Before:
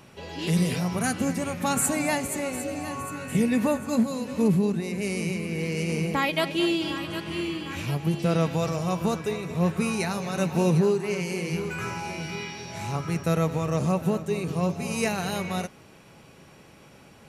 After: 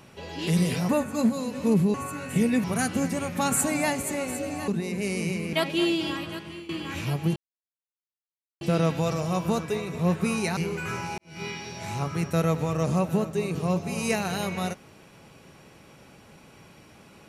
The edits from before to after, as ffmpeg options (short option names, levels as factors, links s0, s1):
-filter_complex "[0:a]asplit=10[s0][s1][s2][s3][s4][s5][s6][s7][s8][s9];[s0]atrim=end=0.892[s10];[s1]atrim=start=3.628:end=4.682[s11];[s2]atrim=start=2.928:end=3.632[s12];[s3]atrim=start=0.888:end=2.932[s13];[s4]atrim=start=4.678:end=5.532[s14];[s5]atrim=start=6.338:end=7.5,asetpts=PTS-STARTPTS,afade=t=out:st=0.602:d=0.56:silence=0.149624[s15];[s6]atrim=start=7.5:end=8.17,asetpts=PTS-STARTPTS,afade=t=in:d=0.004:c=hsin:silence=0.149624,afade=t=out:st=0.666:d=0.004:c=hsin,apad=pad_dur=1.25[s16];[s7]atrim=start=8.17:end=10.132,asetpts=PTS-STARTPTS,afade=t=in:d=0.004:c=hsin[s17];[s8]atrim=start=11.498:end=12.11,asetpts=PTS-STARTPTS,afade=t=out:st=0.608:d=0.004:c=hsin[s18];[s9]atrim=start=12.11,asetpts=PTS-STARTPTS,afade=t=in:d=0.26:c=qua[s19];[s10][s11]acrossfade=d=0.004:c1=hsin:c2=hsin[s20];[s20][s12]acrossfade=d=0.004:c1=hsin:c2=hsin[s21];[s21][s13]acrossfade=d=0.004:c1=hsin:c2=hsin[s22];[s22][s14]acrossfade=d=0.004:c1=hsin:c2=hsin[s23];[s15][s16][s17]concat=n=3:v=0:a=1[s24];[s23][s24]acrossfade=d=0.004:c1=hsin:c2=hsin[s25];[s18][s19]concat=n=2:v=0:a=1[s26];[s25][s26]acrossfade=d=0.004:c1=hsin:c2=hsin"